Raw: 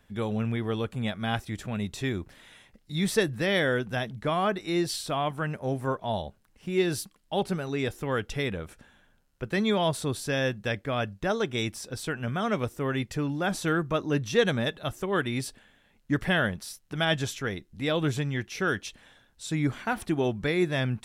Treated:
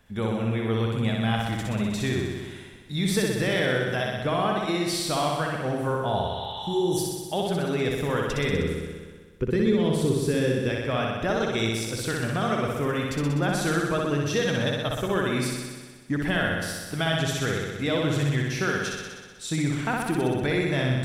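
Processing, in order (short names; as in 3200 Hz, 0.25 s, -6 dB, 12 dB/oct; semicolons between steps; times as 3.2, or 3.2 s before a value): 6.25–6.95 spectral repair 790–5400 Hz before; 8.53–10.69 resonant low shelf 530 Hz +7 dB, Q 3; compressor 4:1, threshold -26 dBFS, peak gain reduction 12.5 dB; flutter echo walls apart 10.7 m, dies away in 1.4 s; gain +2.5 dB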